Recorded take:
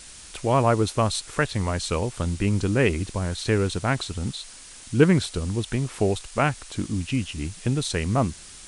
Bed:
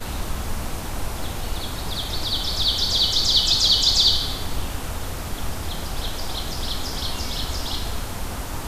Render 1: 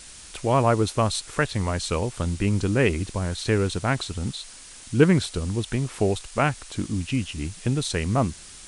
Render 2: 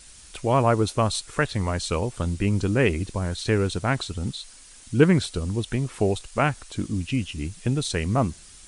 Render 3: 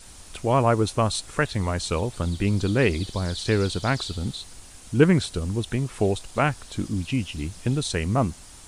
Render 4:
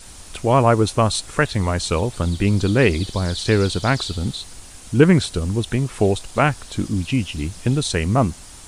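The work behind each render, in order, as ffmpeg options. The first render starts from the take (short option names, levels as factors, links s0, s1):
-af anull
-af "afftdn=nr=6:nf=-44"
-filter_complex "[1:a]volume=0.0841[s0];[0:a][s0]amix=inputs=2:normalize=0"
-af "volume=1.78,alimiter=limit=0.891:level=0:latency=1"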